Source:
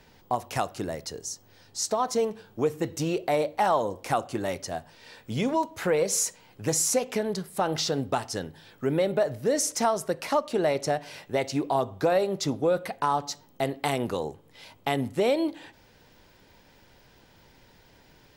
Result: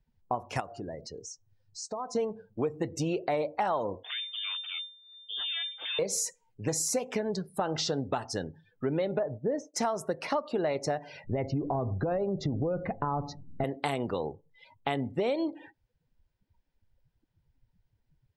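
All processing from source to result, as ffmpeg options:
ffmpeg -i in.wav -filter_complex "[0:a]asettb=1/sr,asplit=3[link_01][link_02][link_03];[link_01]atrim=end=0.604[link_04];[link_02]atrim=start=0.6:end=2.15,asetpts=PTS-STARTPTS,afade=type=in:duration=0.004:curve=qsin,afade=type=out:start_time=1.546:duration=0.004:curve=qsin,bandreject=frequency=116.6:width_type=h:width=4,bandreject=frequency=233.2:width_type=h:width=4,bandreject=frequency=349.8:width_type=h:width=4,bandreject=frequency=466.4:width_type=h:width=4,bandreject=frequency=583:width_type=h:width=4,bandreject=frequency=699.6:width_type=h:width=4,acompressor=threshold=-39dB:ratio=2:attack=3.2:release=140:knee=1:detection=peak[link_05];[link_03]atrim=start=2.146[link_06];[link_04][link_05]acrossfade=duration=0.004:curve1=hsin:curve2=qsin[link_07];[link_07][link_06]acrossfade=duration=0.004:curve1=qsin:curve2=hsin,asettb=1/sr,asplit=3[link_08][link_09][link_10];[link_08]atrim=end=4.034[link_11];[link_09]atrim=start=4.03:end=5.99,asetpts=PTS-STARTPTS,afade=type=in:duration=0.004:curve=qsin,afade=type=out:start_time=1.956:duration=0.004:curve=qsin,acompressor=threshold=-29dB:ratio=6:attack=3.2:release=140:knee=1:detection=peak,aeval=exprs='abs(val(0))':channel_layout=same,lowpass=frequency=3100:width_type=q:width=0.5098,lowpass=frequency=3100:width_type=q:width=0.6013,lowpass=frequency=3100:width_type=q:width=0.9,lowpass=frequency=3100:width_type=q:width=2.563,afreqshift=-3600[link_12];[link_10]atrim=start=5.986[link_13];[link_11][link_12]acrossfade=duration=0.004:curve1=hsin:curve2=qsin[link_14];[link_14][link_13]acrossfade=duration=0.004:curve1=qsin:curve2=hsin,asettb=1/sr,asplit=3[link_15][link_16][link_17];[link_15]atrim=end=9.194[link_18];[link_16]atrim=start=9.19:end=9.74,asetpts=PTS-STARTPTS,afade=type=in:duration=0.004:curve=qsin,afade=type=out:start_time=0.546:duration=0.004:curve=qsin,lowpass=frequency=1000:poles=1,agate=range=-33dB:threshold=-36dB:ratio=3:release=100:detection=peak[link_19];[link_17]atrim=start=9.736[link_20];[link_18][link_19]acrossfade=duration=0.004:curve1=hsin:curve2=qsin[link_21];[link_21][link_20]acrossfade=duration=0.004:curve1=qsin:curve2=hsin,asettb=1/sr,asplit=3[link_22][link_23][link_24];[link_22]atrim=end=11.244[link_25];[link_23]atrim=start=11.24:end=13.64,asetpts=PTS-STARTPTS,afade=type=in:duration=0.004:curve=qsin,afade=type=out:start_time=2.396:duration=0.004:curve=qsin,aemphasis=mode=reproduction:type=riaa,bandreject=frequency=930:width=23,acompressor=threshold=-23dB:ratio=5:attack=3.2:release=140:knee=1:detection=peak[link_26];[link_24]atrim=start=13.636[link_27];[link_25][link_26]acrossfade=duration=0.004:curve1=hsin:curve2=qsin[link_28];[link_28][link_27]acrossfade=duration=0.004:curve1=qsin:curve2=hsin,afftdn=noise_reduction=30:noise_floor=-43,highshelf=frequency=8500:gain=-7,acompressor=threshold=-27dB:ratio=3" out.wav

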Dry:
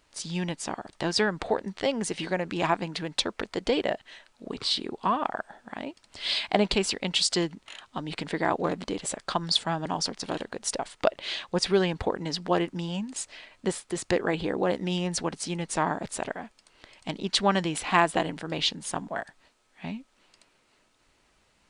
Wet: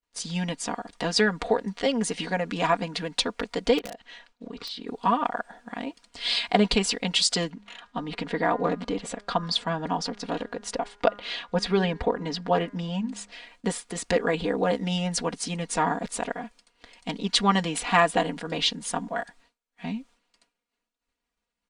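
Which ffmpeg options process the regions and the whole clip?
ffmpeg -i in.wav -filter_complex "[0:a]asettb=1/sr,asplit=3[link_01][link_02][link_03];[link_01]atrim=end=3.784[link_04];[link_02]atrim=start=3.78:end=4.87,asetpts=PTS-STARTPTS,afade=type=in:duration=0.004:curve=qsin,afade=type=out:start_time=1.086:duration=0.004:curve=qsin,lowpass=6100,acompressor=threshold=-37dB:ratio=4:attack=3.2:release=140:knee=1:detection=peak,aeval=exprs='(mod(26.6*val(0)+1,2)-1)/26.6':channel_layout=same[link_05];[link_03]atrim=start=4.866[link_06];[link_04][link_05]acrossfade=duration=0.004:curve1=hsin:curve2=qsin[link_07];[link_07][link_06]acrossfade=duration=0.004:curve1=qsin:curve2=hsin,asettb=1/sr,asplit=3[link_08][link_09][link_10];[link_08]atrim=end=7.504[link_11];[link_09]atrim=start=7.5:end=13.32,asetpts=PTS-STARTPTS,afade=type=in:duration=0.004:curve=qsin,afade=type=out:start_time=5.816:duration=0.004:curve=qsin,aemphasis=mode=reproduction:type=50fm,bandreject=frequency=204.5:width_type=h:width=4,bandreject=frequency=409:width_type=h:width=4,bandreject=frequency=613.5:width_type=h:width=4,bandreject=frequency=818:width_type=h:width=4,bandreject=frequency=1022.5:width_type=h:width=4,bandreject=frequency=1227:width_type=h:width=4,bandreject=frequency=1431.5:width_type=h:width=4,bandreject=frequency=1636:width_type=h:width=4,bandreject=frequency=1840.5:width_type=h:width=4,bandreject=frequency=2045:width_type=h:width=4,bandreject=frequency=2249.5:width_type=h:width=4[link_12];[link_10]atrim=start=13.316[link_13];[link_11][link_12]acrossfade=duration=0.004:curve1=hsin:curve2=qsin[link_14];[link_14][link_13]acrossfade=duration=0.004:curve1=qsin:curve2=hsin,agate=range=-33dB:threshold=-52dB:ratio=3:detection=peak,aecho=1:1:4.2:0.81" out.wav

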